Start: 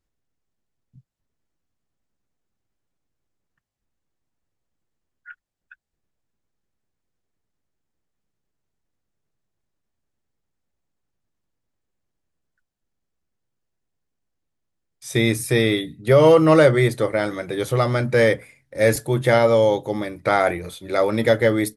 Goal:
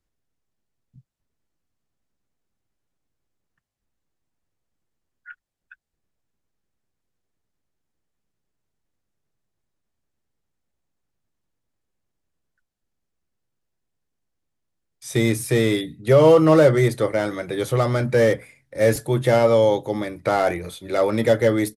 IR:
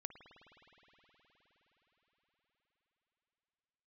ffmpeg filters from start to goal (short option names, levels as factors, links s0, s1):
-filter_complex "[0:a]acrossover=split=310|1000[s0][s1][s2];[s2]volume=22.4,asoftclip=hard,volume=0.0447[s3];[s0][s1][s3]amix=inputs=3:normalize=0,aresample=32000,aresample=44100"